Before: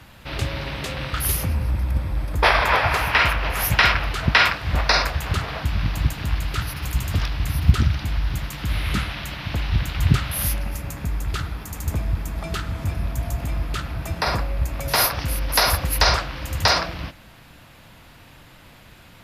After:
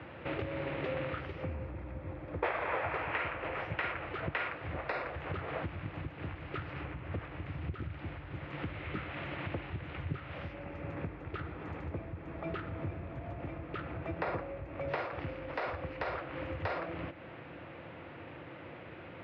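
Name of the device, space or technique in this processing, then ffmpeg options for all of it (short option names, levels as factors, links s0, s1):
bass amplifier: -filter_complex "[0:a]asettb=1/sr,asplit=3[s0][s1][s2];[s0]atrim=end=6.814[s3];[s1]atrim=start=6.81:end=7.46,asetpts=PTS-STARTPTS,afade=t=in:d=0.004:c=qsin,afade=t=out:st=0.646:d=0.004:c=qsin,acrossover=split=2900[s4][s5];[s5]acompressor=threshold=0.00631:ratio=4:attack=1:release=60[s6];[s4][s6]amix=inputs=2:normalize=0[s7];[s2]atrim=start=7.456[s8];[s3][s7]acrossfade=d=0.004:c1=hsin:c2=qsin[s9];[s9][s8]acrossfade=d=0.004:c1=qsin:c2=hsin,acompressor=threshold=0.0178:ratio=4,highpass=f=90:w=0.5412,highpass=f=90:w=1.3066,equalizer=f=120:t=q:w=4:g=-5,equalizer=f=210:t=q:w=4:g=-7,equalizer=f=340:t=q:w=4:g=8,equalizer=f=510:t=q:w=4:g=7,equalizer=f=1000:t=q:w=4:g=-3,equalizer=f=1600:t=q:w=4:g=-3,lowpass=f=2400:w=0.5412,lowpass=f=2400:w=1.3066,volume=1.19"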